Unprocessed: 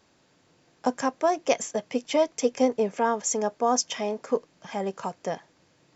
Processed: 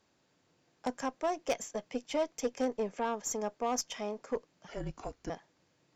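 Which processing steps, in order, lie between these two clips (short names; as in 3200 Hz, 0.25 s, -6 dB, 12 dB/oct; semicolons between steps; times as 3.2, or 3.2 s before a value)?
4.68–5.3 frequency shift -230 Hz; added harmonics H 4 -17 dB, 6 -18 dB, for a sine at -9 dBFS; gain -9 dB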